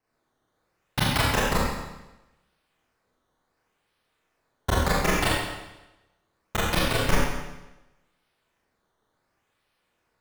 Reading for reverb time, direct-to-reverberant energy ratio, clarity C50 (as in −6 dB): 1.0 s, −8.0 dB, −1.5 dB